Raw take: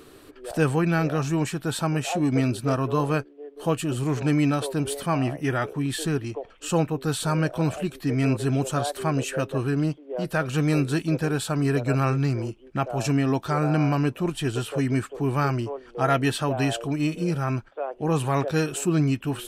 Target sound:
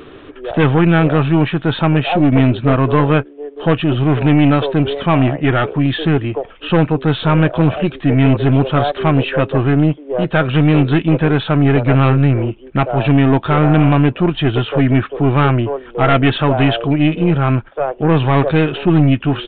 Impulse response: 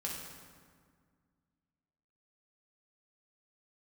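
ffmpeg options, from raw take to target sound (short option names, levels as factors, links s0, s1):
-af "aeval=exprs='0.422*(cos(1*acos(clip(val(0)/0.422,-1,1)))-cos(1*PI/2))+0.119*(cos(5*acos(clip(val(0)/0.422,-1,1)))-cos(5*PI/2))+0.0668*(cos(6*acos(clip(val(0)/0.422,-1,1)))-cos(6*PI/2))':c=same,aresample=8000,aresample=44100,volume=1.68"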